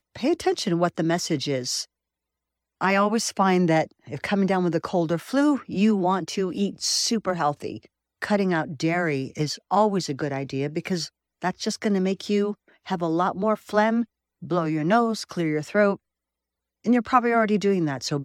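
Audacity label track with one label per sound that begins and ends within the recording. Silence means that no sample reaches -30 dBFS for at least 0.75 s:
2.810000	15.950000	sound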